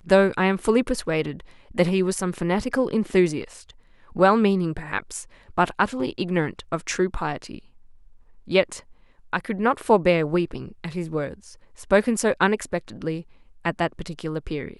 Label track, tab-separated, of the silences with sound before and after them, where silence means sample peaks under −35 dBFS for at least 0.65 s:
7.590000	8.480000	silence